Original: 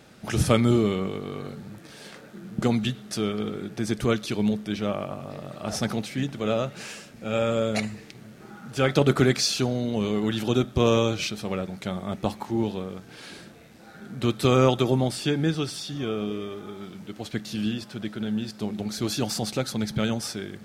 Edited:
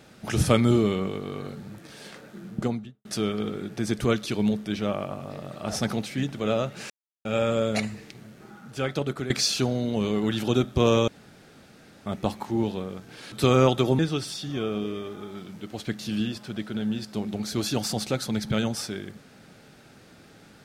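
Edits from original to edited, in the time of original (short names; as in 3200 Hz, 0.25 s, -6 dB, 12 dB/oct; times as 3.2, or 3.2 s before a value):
2.41–3.05 studio fade out
6.9–7.25 mute
8.15–9.3 fade out, to -14 dB
11.08–12.06 room tone
13.32–14.33 cut
15–15.45 cut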